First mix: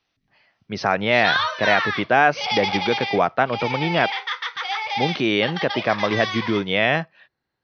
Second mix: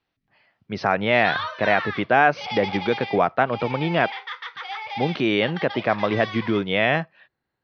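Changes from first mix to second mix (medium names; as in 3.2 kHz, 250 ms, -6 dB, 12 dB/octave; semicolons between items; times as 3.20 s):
background -5.0 dB; master: add distance through air 140 m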